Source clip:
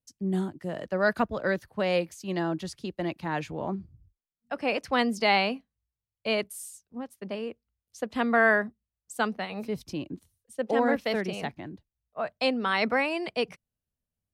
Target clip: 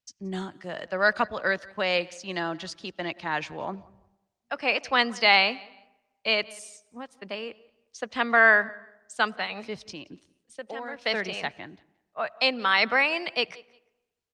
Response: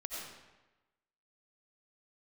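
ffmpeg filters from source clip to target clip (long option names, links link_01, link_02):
-filter_complex "[0:a]lowpass=frequency=6800:width=0.5412,lowpass=frequency=6800:width=1.3066,tiltshelf=frequency=670:gain=-8,asplit=3[link_01][link_02][link_03];[link_01]afade=type=out:start_time=9.92:duration=0.02[link_04];[link_02]acompressor=threshold=-39dB:ratio=2.5,afade=type=in:start_time=9.92:duration=0.02,afade=type=out:start_time=11:duration=0.02[link_05];[link_03]afade=type=in:start_time=11:duration=0.02[link_06];[link_04][link_05][link_06]amix=inputs=3:normalize=0,aecho=1:1:176|352:0.0668|0.0154,asplit=2[link_07][link_08];[1:a]atrim=start_sample=2205,highshelf=frequency=2400:gain=-11[link_09];[link_08][link_09]afir=irnorm=-1:irlink=0,volume=-21dB[link_10];[link_07][link_10]amix=inputs=2:normalize=0" -ar 48000 -c:a libopus -b:a 48k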